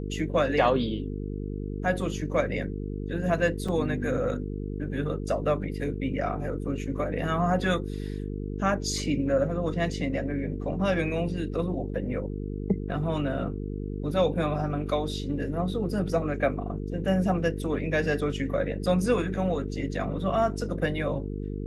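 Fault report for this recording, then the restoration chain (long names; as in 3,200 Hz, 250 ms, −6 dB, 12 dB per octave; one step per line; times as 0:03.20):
mains buzz 50 Hz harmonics 9 −33 dBFS
0:03.68–0:03.69: drop-out 5 ms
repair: hum removal 50 Hz, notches 9
repair the gap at 0:03.68, 5 ms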